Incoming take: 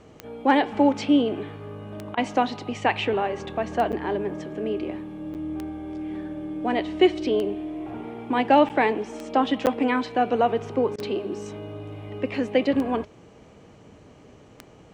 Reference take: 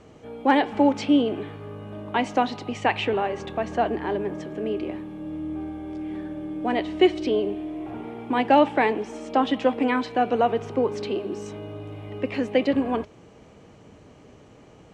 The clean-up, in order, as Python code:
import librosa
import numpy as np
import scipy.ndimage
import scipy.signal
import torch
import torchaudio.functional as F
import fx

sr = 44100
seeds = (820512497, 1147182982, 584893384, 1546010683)

y = fx.fix_declick_ar(x, sr, threshold=10.0)
y = fx.fix_interpolate(y, sr, at_s=(3.92, 5.34, 8.69, 9.66), length_ms=8.5)
y = fx.fix_interpolate(y, sr, at_s=(2.15, 10.96), length_ms=22.0)